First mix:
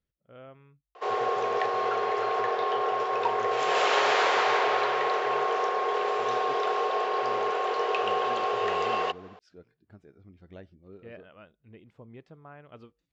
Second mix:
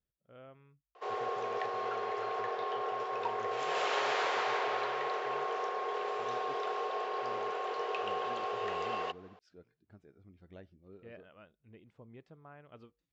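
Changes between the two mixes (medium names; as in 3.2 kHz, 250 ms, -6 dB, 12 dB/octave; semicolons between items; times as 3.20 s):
speech -5.5 dB; background -8.5 dB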